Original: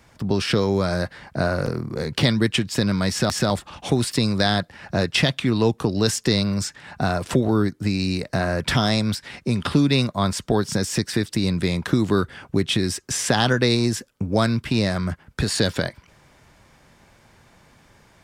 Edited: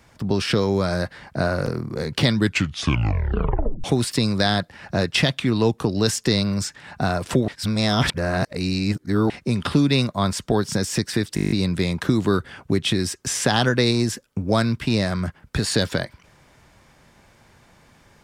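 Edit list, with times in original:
2.35 tape stop 1.49 s
7.48–9.3 reverse
11.35 stutter 0.02 s, 9 plays

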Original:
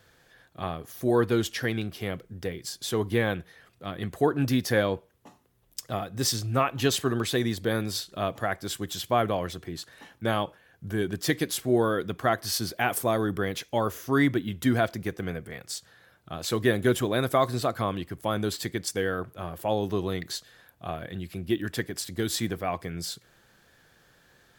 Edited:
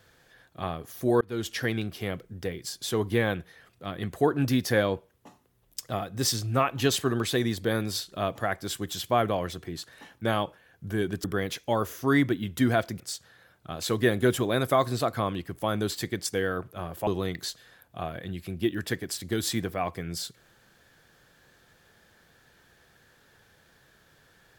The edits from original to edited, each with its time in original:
1.21–1.56 fade in
11.24–13.29 cut
15.05–15.62 cut
19.69–19.94 cut

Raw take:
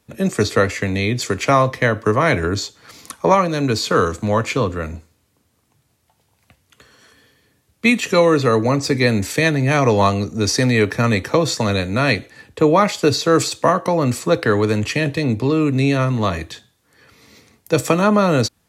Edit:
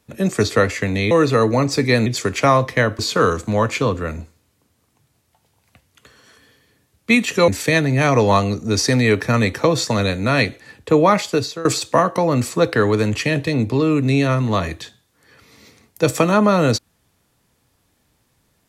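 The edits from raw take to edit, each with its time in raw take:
2.04–3.74 cut
8.23–9.18 move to 1.11
12.9–13.35 fade out, to -19 dB

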